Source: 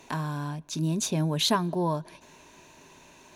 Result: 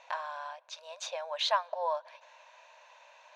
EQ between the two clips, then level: brick-wall FIR high-pass 490 Hz; distance through air 180 m; 0.0 dB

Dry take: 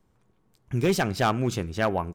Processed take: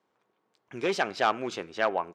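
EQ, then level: band-pass 440–4600 Hz; 0.0 dB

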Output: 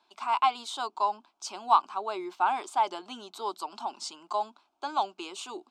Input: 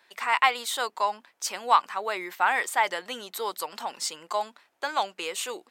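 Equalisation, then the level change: dynamic bell 380 Hz, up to +5 dB, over -44 dBFS, Q 2; distance through air 100 m; static phaser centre 500 Hz, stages 6; 0.0 dB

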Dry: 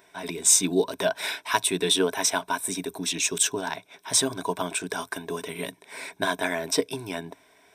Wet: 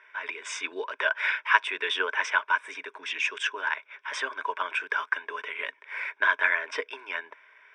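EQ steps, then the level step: elliptic band-pass 580–3900 Hz, stop band 60 dB; static phaser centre 1.7 kHz, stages 4; +8.0 dB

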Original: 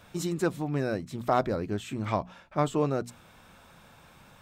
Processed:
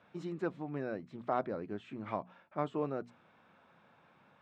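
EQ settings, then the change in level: band-pass 170–2400 Hz; -8.0 dB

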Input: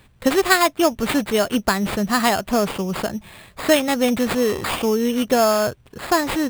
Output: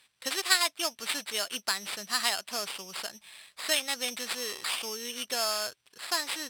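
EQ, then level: band-pass filter 6.1 kHz, Q 0.81; band-stop 6.8 kHz, Q 6.3; 0.0 dB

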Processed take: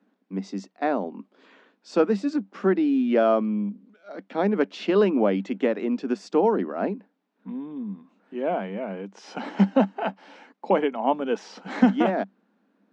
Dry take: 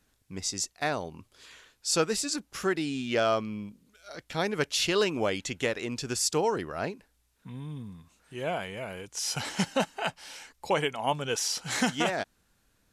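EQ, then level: rippled Chebyshev high-pass 190 Hz, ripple 3 dB; tape spacing loss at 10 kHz 38 dB; bass shelf 330 Hz +11.5 dB; +6.5 dB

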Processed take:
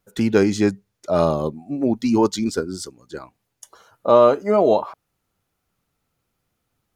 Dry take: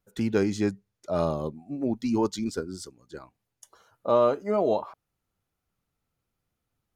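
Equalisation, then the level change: bass shelf 120 Hz -5 dB; +8.5 dB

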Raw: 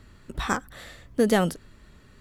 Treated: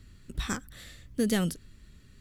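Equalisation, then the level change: peaking EQ 800 Hz -14.5 dB 2.2 oct; 0.0 dB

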